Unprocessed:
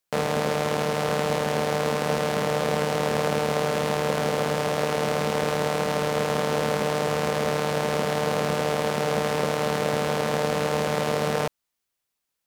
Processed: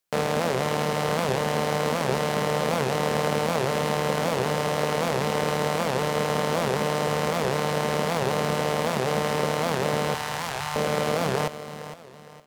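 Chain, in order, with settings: 10.14–10.76 s: Chebyshev band-stop 130–830 Hz, order 3; on a send: feedback delay 461 ms, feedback 35%, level -12.5 dB; on the sum: warped record 78 rpm, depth 250 cents

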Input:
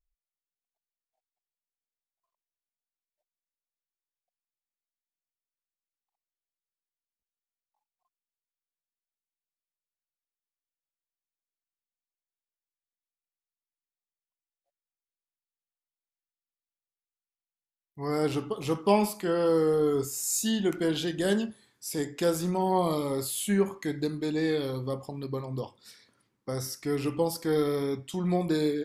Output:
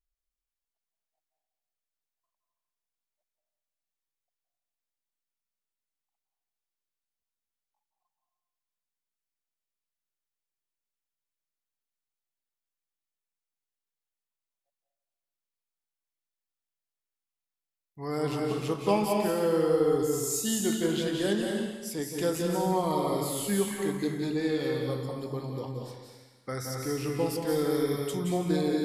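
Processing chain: 26.47–26.74 s: time-frequency box 1.2–2.5 kHz +9 dB; 27.70–28.35 s: treble shelf 5.9 kHz +10.5 dB; reverberation RT60 1.3 s, pre-delay 164 ms, DRR 0.5 dB; trim -3 dB

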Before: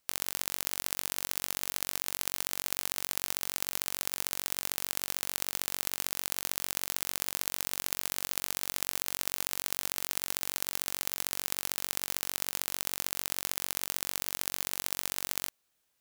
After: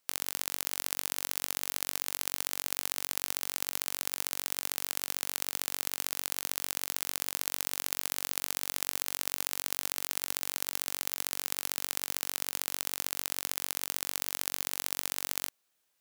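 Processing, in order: bass shelf 140 Hz -9.5 dB

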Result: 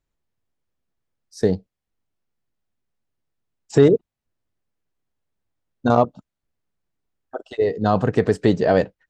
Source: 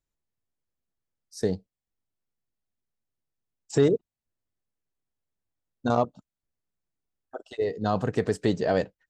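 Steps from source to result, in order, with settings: treble shelf 5.4 kHz -11 dB; trim +7.5 dB

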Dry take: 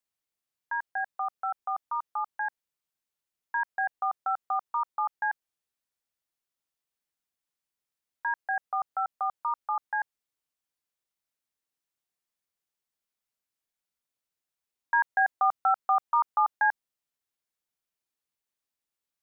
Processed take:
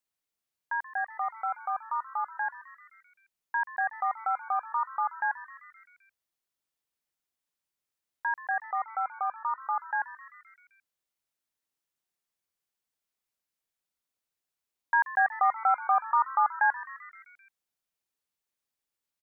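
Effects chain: 8.64–9.61 s: distance through air 180 m; frequency-shifting echo 130 ms, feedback 63%, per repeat +120 Hz, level -16.5 dB

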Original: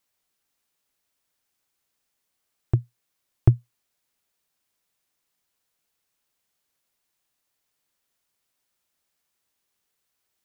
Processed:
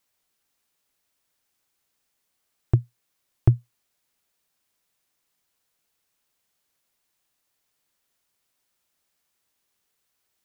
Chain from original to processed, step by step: peak limiter -8 dBFS, peak gain reduction 3.5 dB; trim +2 dB

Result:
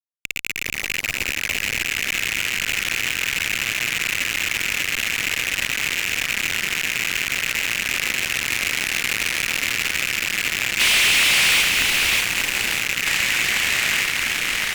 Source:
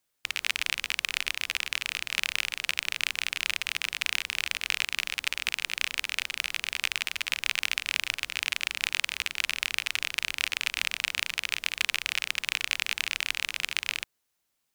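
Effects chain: 0.65–1.82 s: bass shelf 70 Hz +11.5 dB; 7.92–9.44 s: frequency shift -31 Hz; 10.83–11.59 s: spectral replace 2–11 kHz; on a send: thinning echo 593 ms, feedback 50%, high-pass 520 Hz, level -8 dB; on the sum: fuzz box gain 44 dB, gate -43 dBFS; ever faster or slower copies 214 ms, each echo -3 st, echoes 3, each echo -6 dB; trim -1.5 dB

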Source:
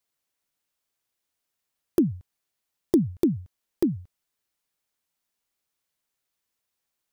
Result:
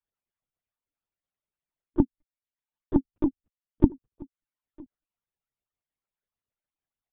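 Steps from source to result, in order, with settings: harmonic-percussive separation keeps percussive; high-pass 66 Hz 12 dB/octave; reverb removal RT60 0.68 s; low-pass 1.3 kHz 6 dB/octave; peaking EQ 170 Hz +3.5 dB 1 oct; in parallel at 0 dB: peak limiter -17 dBFS, peak gain reduction 7.5 dB; on the sum: saturation -8 dBFS, distortion -23 dB; on a send: delay 968 ms -20 dB; on the sum: monotone LPC vocoder at 8 kHz 300 Hz; trim -6 dB

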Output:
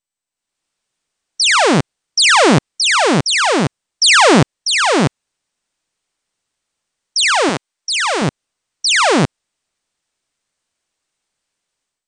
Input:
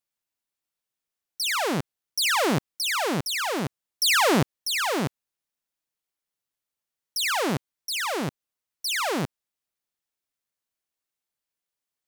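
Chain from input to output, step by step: 7.49–8.22 s: high-pass 430 Hz 6 dB/octave; level rider gain up to 16 dB; trim -1.5 dB; MP2 128 kbps 32 kHz

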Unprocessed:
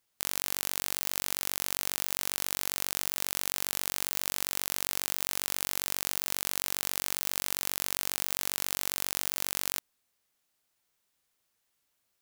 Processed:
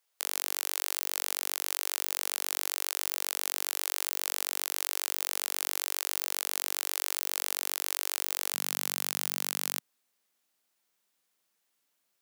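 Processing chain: high-pass 410 Hz 24 dB/octave, from 8.54 s 160 Hz

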